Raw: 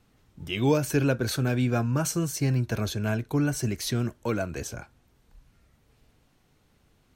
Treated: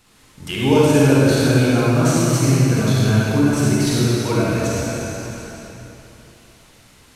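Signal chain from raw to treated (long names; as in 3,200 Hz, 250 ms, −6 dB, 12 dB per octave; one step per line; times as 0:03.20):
variable-slope delta modulation 64 kbit/s
convolution reverb RT60 2.9 s, pre-delay 38 ms, DRR −7.5 dB
one half of a high-frequency compander encoder only
level +2.5 dB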